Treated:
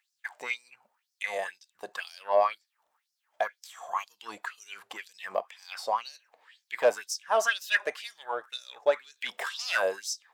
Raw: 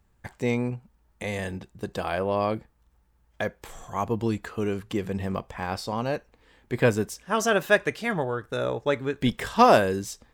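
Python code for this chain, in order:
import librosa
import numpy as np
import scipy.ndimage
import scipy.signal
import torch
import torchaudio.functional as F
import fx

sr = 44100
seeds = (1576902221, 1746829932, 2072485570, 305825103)

y = 10.0 ** (-15.5 / 20.0) * np.tanh(x / 10.0 ** (-15.5 / 20.0))
y = fx.quant_float(y, sr, bits=8)
y = fx.filter_lfo_highpass(y, sr, shape='sine', hz=2.0, low_hz=620.0, high_hz=5500.0, q=4.8)
y = F.gain(torch.from_numpy(y), -4.0).numpy()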